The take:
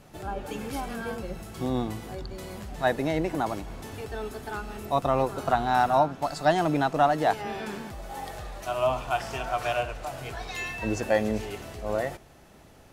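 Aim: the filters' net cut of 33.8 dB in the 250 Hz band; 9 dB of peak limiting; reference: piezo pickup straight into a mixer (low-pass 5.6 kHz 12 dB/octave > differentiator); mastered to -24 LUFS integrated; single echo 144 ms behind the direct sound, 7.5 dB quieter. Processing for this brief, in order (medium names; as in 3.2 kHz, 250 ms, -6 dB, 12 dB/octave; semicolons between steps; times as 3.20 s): peaking EQ 250 Hz -7.5 dB; peak limiter -20 dBFS; low-pass 5.6 kHz 12 dB/octave; differentiator; delay 144 ms -7.5 dB; trim +24 dB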